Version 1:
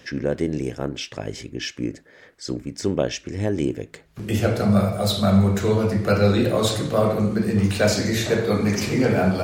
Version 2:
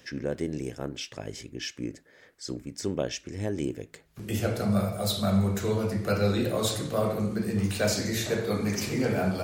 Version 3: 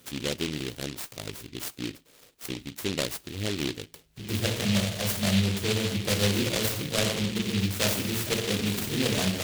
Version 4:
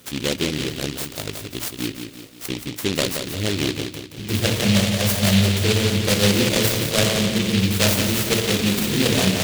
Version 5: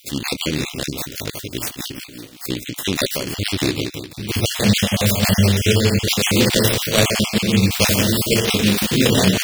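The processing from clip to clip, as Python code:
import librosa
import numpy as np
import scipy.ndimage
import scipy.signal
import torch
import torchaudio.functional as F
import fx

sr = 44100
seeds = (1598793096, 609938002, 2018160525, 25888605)

y1 = fx.high_shelf(x, sr, hz=6900.0, db=8.5)
y1 = y1 * librosa.db_to_amplitude(-7.5)
y2 = fx.noise_mod_delay(y1, sr, seeds[0], noise_hz=3000.0, depth_ms=0.27)
y3 = fx.echo_feedback(y2, sr, ms=175, feedback_pct=46, wet_db=-7)
y3 = y3 * librosa.db_to_amplitude(7.0)
y4 = fx.spec_dropout(y3, sr, seeds[1], share_pct=29)
y4 = y4 * librosa.db_to_amplitude(4.0)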